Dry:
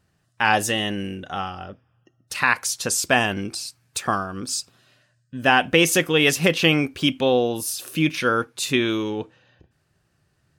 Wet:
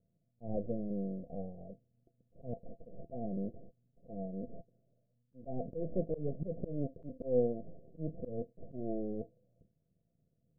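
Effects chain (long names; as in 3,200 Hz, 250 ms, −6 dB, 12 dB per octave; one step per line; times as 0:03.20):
half-wave rectification
Chebyshev low-pass with heavy ripple 700 Hz, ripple 9 dB
volume swells 170 ms
level −1 dB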